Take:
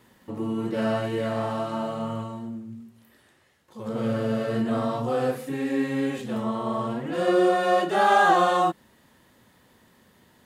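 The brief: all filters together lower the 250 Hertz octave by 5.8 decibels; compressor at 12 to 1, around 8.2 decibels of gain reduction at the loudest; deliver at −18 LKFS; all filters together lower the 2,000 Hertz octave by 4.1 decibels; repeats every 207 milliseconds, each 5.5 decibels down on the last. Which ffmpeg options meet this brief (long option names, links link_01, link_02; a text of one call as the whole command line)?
ffmpeg -i in.wav -af "equalizer=frequency=250:width_type=o:gain=-7.5,equalizer=frequency=2000:width_type=o:gain=-5.5,acompressor=threshold=-24dB:ratio=12,aecho=1:1:207|414|621|828|1035|1242|1449:0.531|0.281|0.149|0.079|0.0419|0.0222|0.0118,volume=11.5dB" out.wav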